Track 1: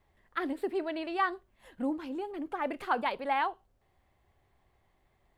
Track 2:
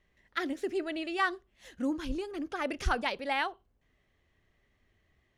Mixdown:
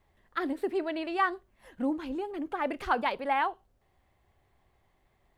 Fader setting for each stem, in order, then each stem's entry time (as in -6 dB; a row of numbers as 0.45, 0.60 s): +1.0, -15.0 dB; 0.00, 0.00 s